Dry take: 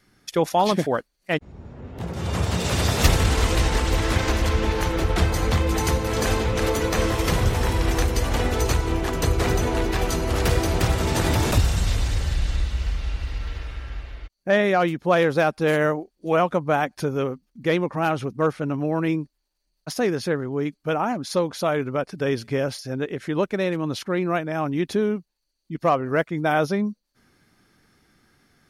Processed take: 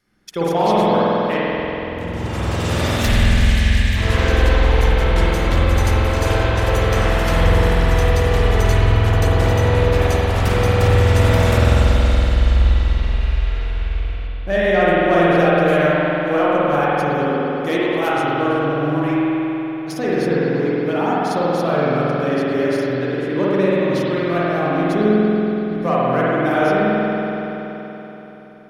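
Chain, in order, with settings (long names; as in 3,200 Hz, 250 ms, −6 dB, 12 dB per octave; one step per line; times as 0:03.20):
0:02.92–0:03.97: gain on a spectral selection 270–1,500 Hz −27 dB
0:17.32–0:18.36: high-shelf EQ 5,200 Hz +10.5 dB
leveller curve on the samples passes 1
spring reverb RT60 3.9 s, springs 47 ms, chirp 70 ms, DRR −8.5 dB
level −6.5 dB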